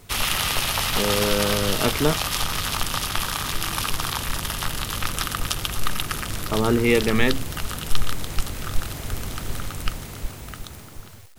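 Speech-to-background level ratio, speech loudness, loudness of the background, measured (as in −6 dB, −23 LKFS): 2.5 dB, −23.5 LKFS, −26.0 LKFS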